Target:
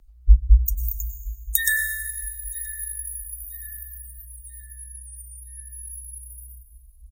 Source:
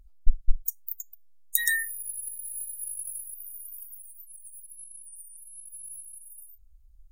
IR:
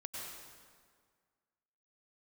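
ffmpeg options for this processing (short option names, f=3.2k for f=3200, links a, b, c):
-filter_complex "[0:a]asplit=2[a][b];[b]adelay=973,lowpass=f=3.6k:p=1,volume=-19.5dB,asplit=2[c][d];[d]adelay=973,lowpass=f=3.6k:p=1,volume=0.5,asplit=2[e][f];[f]adelay=973,lowpass=f=3.6k:p=1,volume=0.5,asplit=2[g][h];[h]adelay=973,lowpass=f=3.6k:p=1,volume=0.5[i];[a][c][e][g][i]amix=inputs=5:normalize=0,afreqshift=-62,asplit=2[j][k];[1:a]atrim=start_sample=2205[l];[k][l]afir=irnorm=-1:irlink=0,volume=-0.5dB[m];[j][m]amix=inputs=2:normalize=0"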